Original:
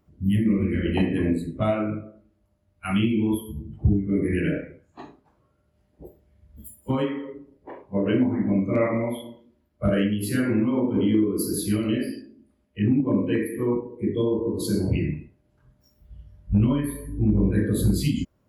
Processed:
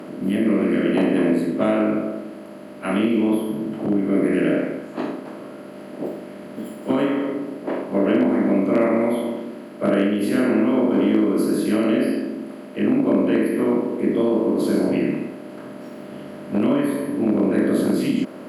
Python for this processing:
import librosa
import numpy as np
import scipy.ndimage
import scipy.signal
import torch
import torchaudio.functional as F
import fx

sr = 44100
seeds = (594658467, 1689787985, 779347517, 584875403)

y = fx.bin_compress(x, sr, power=0.4)
y = scipy.signal.sosfilt(scipy.signal.butter(4, 210.0, 'highpass', fs=sr, output='sos'), y)
y = fx.high_shelf(y, sr, hz=3600.0, db=-11.5)